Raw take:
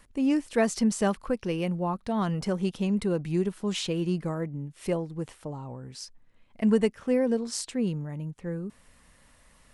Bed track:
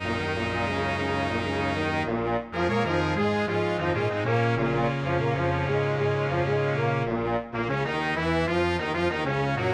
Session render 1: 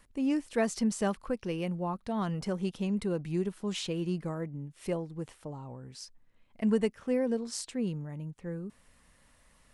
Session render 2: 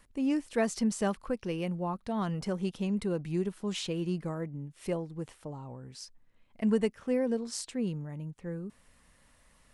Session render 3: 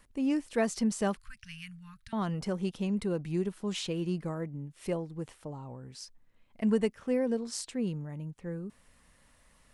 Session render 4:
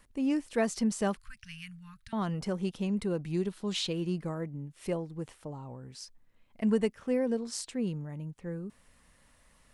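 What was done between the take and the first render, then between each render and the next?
level −4.5 dB
no processing that can be heard
0:01.17–0:02.13: elliptic band-stop filter 130–1,600 Hz, stop band 50 dB
0:03.33–0:03.93: parametric band 4,000 Hz +6.5 dB 0.7 octaves

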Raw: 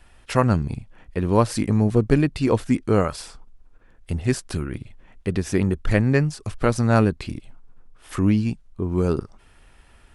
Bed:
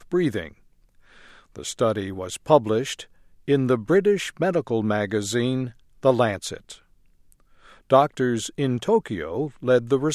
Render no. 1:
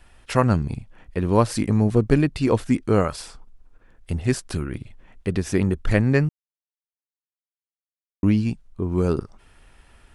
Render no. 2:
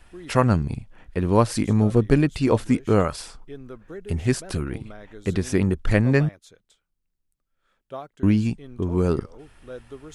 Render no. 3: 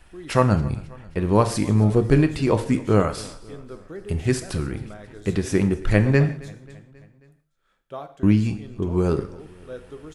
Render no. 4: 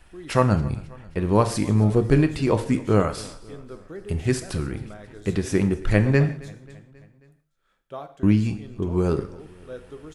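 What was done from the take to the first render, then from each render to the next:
0:06.29–0:08.23: silence
mix in bed −19.5 dB
repeating echo 269 ms, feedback 56%, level −22 dB; reverb whose tail is shaped and stops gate 200 ms falling, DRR 8 dB
level −1 dB

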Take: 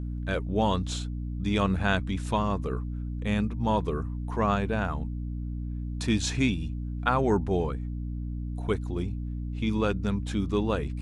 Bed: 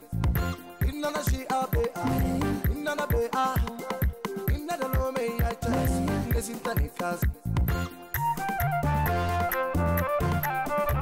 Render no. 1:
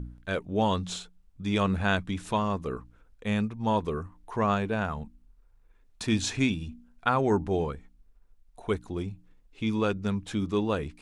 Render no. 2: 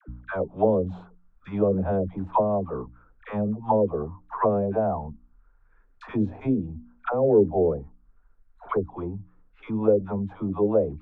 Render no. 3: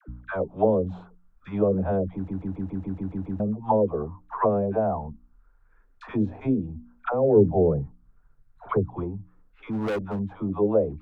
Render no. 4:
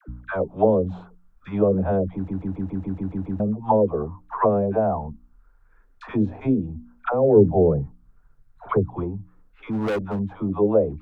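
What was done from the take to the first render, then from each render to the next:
hum removal 60 Hz, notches 5
all-pass dispersion lows, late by 87 ms, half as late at 620 Hz; envelope-controlled low-pass 490–1,500 Hz down, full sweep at −21.5 dBFS
0:02.14: stutter in place 0.14 s, 9 plays; 0:07.36–0:09.04: parametric band 130 Hz +14 dB; 0:09.71–0:10.19: gain into a clipping stage and back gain 24.5 dB
level +3 dB

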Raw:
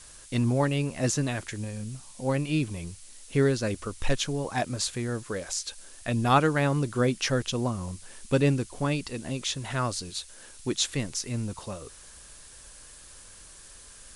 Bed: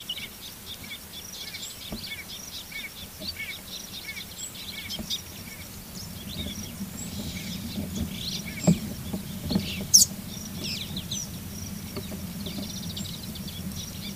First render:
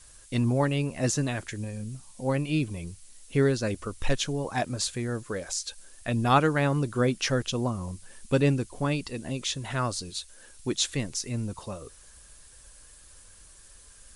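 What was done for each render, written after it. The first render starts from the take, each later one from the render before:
broadband denoise 6 dB, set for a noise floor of −49 dBFS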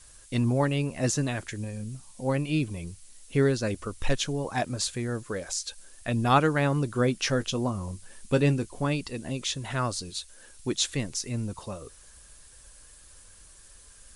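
0:07.19–0:08.81: double-tracking delay 20 ms −14 dB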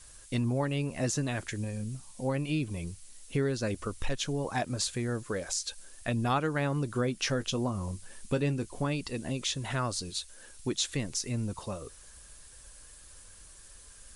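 downward compressor 2.5 to 1, threshold −28 dBFS, peak gain reduction 9 dB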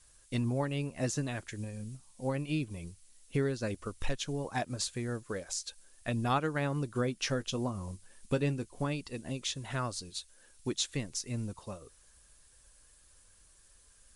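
expander for the loud parts 1.5 to 1, over −43 dBFS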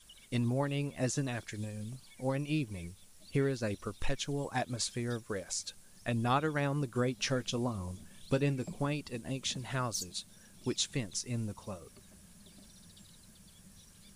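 mix in bed −23.5 dB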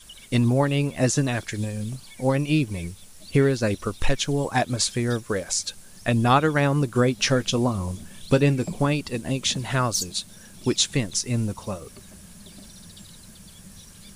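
level +11.5 dB

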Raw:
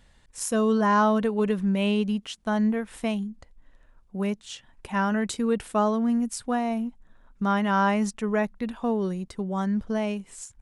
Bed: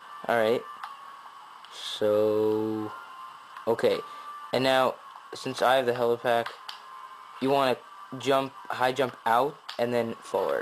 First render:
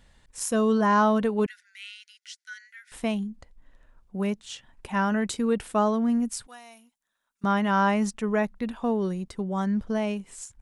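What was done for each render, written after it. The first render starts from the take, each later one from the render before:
0:01.46–0:02.92: Chebyshev high-pass with heavy ripple 1,400 Hz, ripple 9 dB
0:06.47–0:07.44: first difference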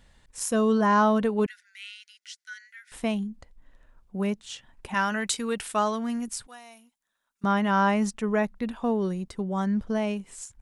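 0:04.94–0:06.28: tilt shelving filter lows −7 dB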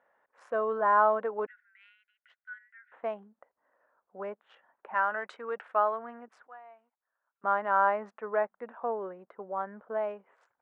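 adaptive Wiener filter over 9 samples
Chebyshev band-pass filter 540–1,500 Hz, order 2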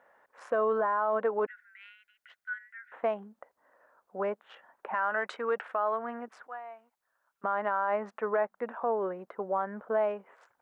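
in parallel at +2.5 dB: downward compressor, threshold −35 dBFS, peak gain reduction 16 dB
on the sum: brickwall limiter −19.5 dBFS, peak gain reduction 9.5 dB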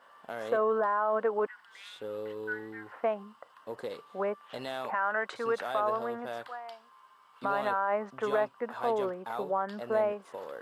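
mix in bed −14.5 dB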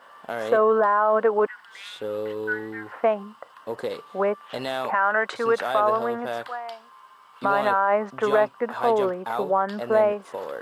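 level +8.5 dB

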